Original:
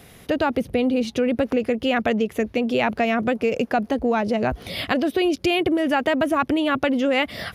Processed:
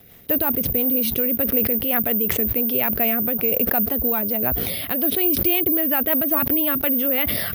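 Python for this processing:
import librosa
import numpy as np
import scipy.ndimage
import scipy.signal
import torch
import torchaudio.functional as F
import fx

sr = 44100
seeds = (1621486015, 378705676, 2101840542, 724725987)

y = fx.rotary(x, sr, hz=5.5)
y = (np.kron(scipy.signal.resample_poly(y, 1, 3), np.eye(3)[0]) * 3)[:len(y)]
y = fx.sustainer(y, sr, db_per_s=25.0)
y = y * 10.0 ** (-3.5 / 20.0)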